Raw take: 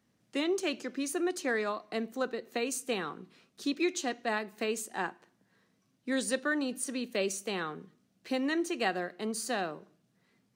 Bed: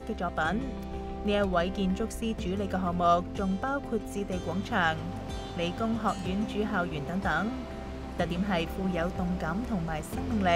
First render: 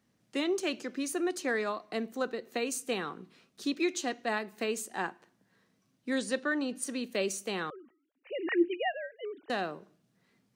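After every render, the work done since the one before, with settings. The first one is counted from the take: 6.18–6.82 s: distance through air 50 m; 7.70–9.50 s: formants replaced by sine waves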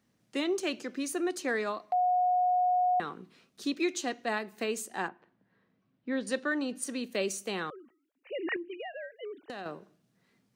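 1.92–3.00 s: bleep 726 Hz -23 dBFS; 5.08–6.27 s: distance through air 320 m; 8.56–9.66 s: compression 12:1, threshold -36 dBFS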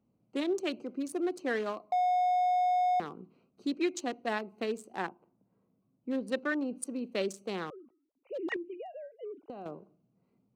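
local Wiener filter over 25 samples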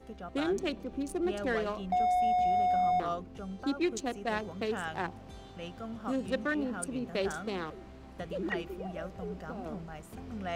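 add bed -11.5 dB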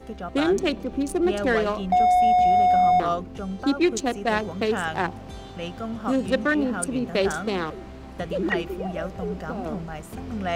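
trim +9.5 dB

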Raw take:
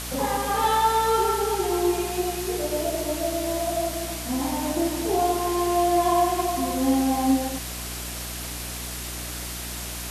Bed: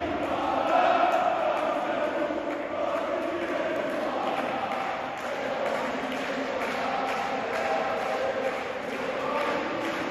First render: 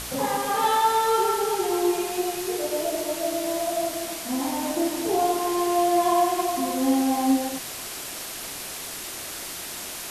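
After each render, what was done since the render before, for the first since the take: de-hum 60 Hz, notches 5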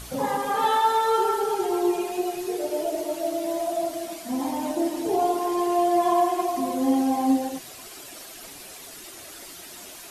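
noise reduction 10 dB, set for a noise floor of -35 dBFS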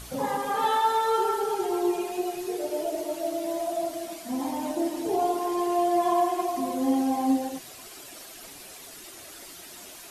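trim -2.5 dB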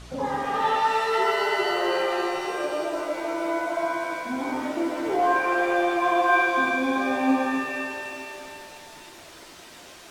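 distance through air 97 m; pitch-shifted reverb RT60 2.2 s, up +7 st, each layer -2 dB, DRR 4 dB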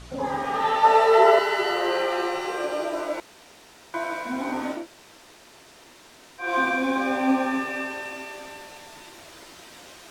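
0.83–1.39 s: peaking EQ 590 Hz +14 dB 1.1 oct; 3.20–3.94 s: room tone; 4.79–6.46 s: room tone, crossfade 0.16 s

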